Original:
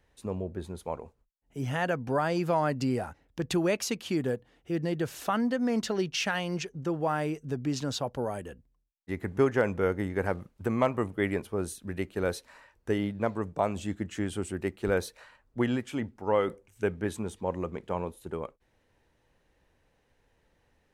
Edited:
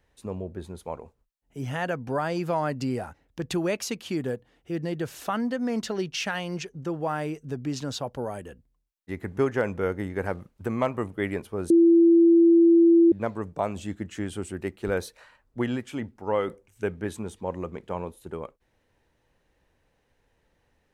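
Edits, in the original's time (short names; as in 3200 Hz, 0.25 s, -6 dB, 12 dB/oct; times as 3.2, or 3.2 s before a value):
11.7–13.12 bleep 336 Hz -13 dBFS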